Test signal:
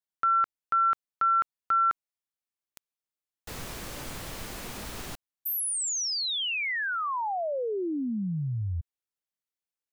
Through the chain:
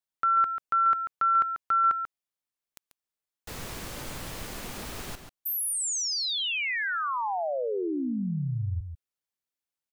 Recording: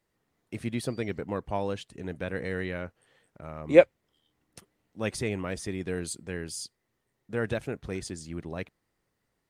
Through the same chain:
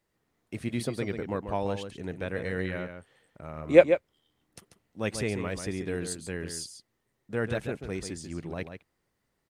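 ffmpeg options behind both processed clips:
-filter_complex "[0:a]asplit=2[s0][s1];[s1]adelay=139.9,volume=0.398,highshelf=f=4000:g=-3.15[s2];[s0][s2]amix=inputs=2:normalize=0"

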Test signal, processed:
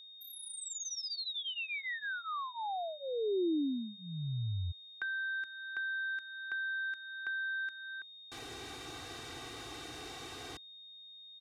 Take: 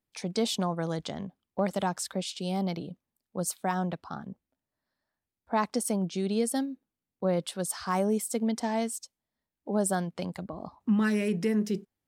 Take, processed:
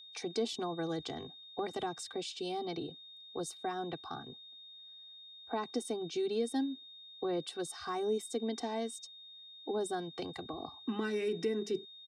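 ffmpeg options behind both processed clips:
-filter_complex "[0:a]aecho=1:1:2.6:1,acrossover=split=350[s0][s1];[s1]acompressor=threshold=0.0112:ratio=2.5[s2];[s0][s2]amix=inputs=2:normalize=0,highpass=110,lowpass=7400,aeval=exprs='val(0)+0.00398*sin(2*PI*3700*n/s)':c=same,volume=0.75"

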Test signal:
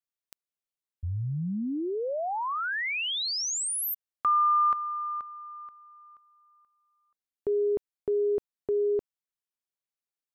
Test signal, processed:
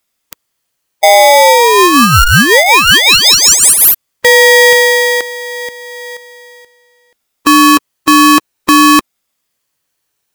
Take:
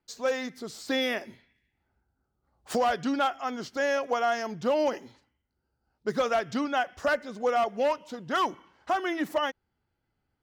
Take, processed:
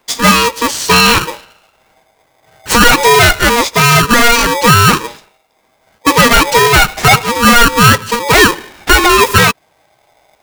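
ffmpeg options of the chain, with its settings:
-af "afftfilt=real='re*pow(10,8/40*sin(2*PI*(1.9*log(max(b,1)*sr/1024/100)/log(2)-(-0.55)*(pts-256)/sr)))':imag='im*pow(10,8/40*sin(2*PI*(1.9*log(max(b,1)*sr/1024/100)/log(2)-(-0.55)*(pts-256)/sr)))':win_size=1024:overlap=0.75,apsyclip=20,aeval=exprs='val(0)*sgn(sin(2*PI*710*n/s))':c=same,volume=0.794"

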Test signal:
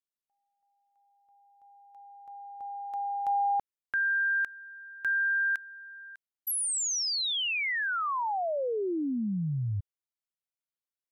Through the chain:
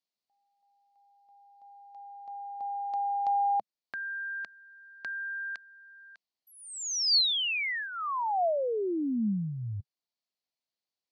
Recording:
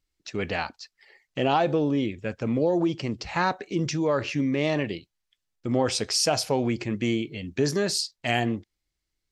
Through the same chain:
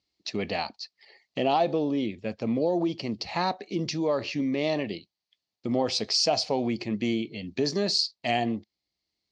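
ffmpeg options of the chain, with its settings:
-filter_complex "[0:a]asplit=2[s0][s1];[s1]acompressor=threshold=0.02:ratio=6:release=973:detection=rms,volume=1.41[s2];[s0][s2]amix=inputs=2:normalize=0,highpass=110,equalizer=f=140:t=q:w=4:g=-5,equalizer=f=210:t=q:w=4:g=4,equalizer=f=690:t=q:w=4:g=5,equalizer=f=1500:t=q:w=4:g=-10,equalizer=f=4400:t=q:w=4:g=9,lowpass=f=6200:w=0.5412,lowpass=f=6200:w=1.3066,volume=0.562"

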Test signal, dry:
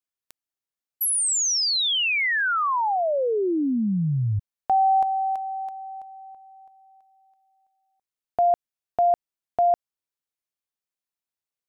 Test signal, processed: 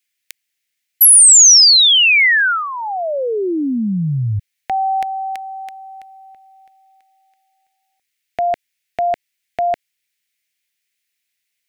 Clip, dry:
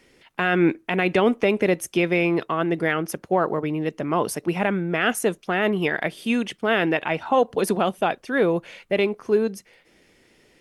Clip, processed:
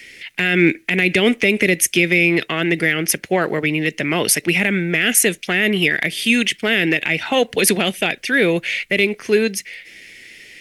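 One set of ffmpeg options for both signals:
-filter_complex "[0:a]highshelf=f=1500:t=q:w=3:g=11,acrossover=split=470|5300[s0][s1][s2];[s1]acompressor=threshold=0.141:ratio=5:attack=0.18:release=162:knee=2.83:detection=peak[s3];[s0][s3][s2]amix=inputs=3:normalize=0,volume=1.78"

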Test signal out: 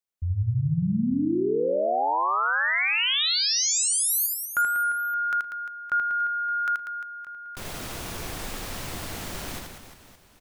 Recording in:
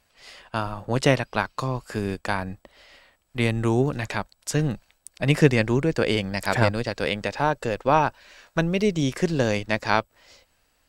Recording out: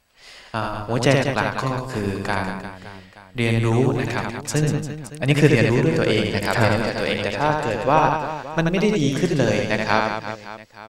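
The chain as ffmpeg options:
-af "aecho=1:1:80|192|348.8|568.3|875.6:0.631|0.398|0.251|0.158|0.1,volume=1.19"

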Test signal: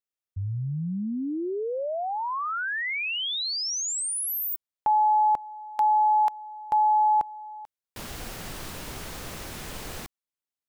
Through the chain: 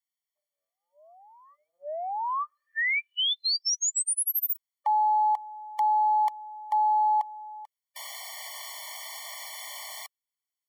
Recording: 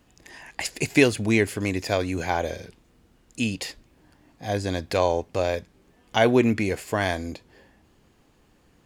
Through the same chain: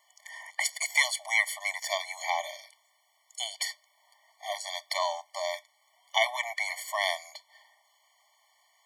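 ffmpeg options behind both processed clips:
-filter_complex "[0:a]equalizer=f=660:w=1.2:g=-8,acrossover=split=150|970|6100[s0][s1][s2][s3];[s1]asoftclip=type=tanh:threshold=0.0422[s4];[s0][s4][s2][s3]amix=inputs=4:normalize=0,afftfilt=real='re*eq(mod(floor(b*sr/1024/590),2),1)':imag='im*eq(mod(floor(b*sr/1024/590),2),1)':win_size=1024:overlap=0.75,volume=1.68"

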